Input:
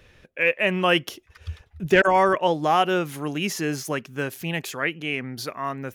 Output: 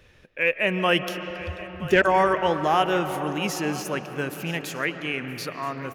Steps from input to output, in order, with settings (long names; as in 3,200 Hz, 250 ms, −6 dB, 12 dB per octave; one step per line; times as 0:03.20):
single-tap delay 974 ms −17.5 dB
on a send at −9 dB: convolution reverb RT60 4.5 s, pre-delay 105 ms
on the sum: level −1.5 dB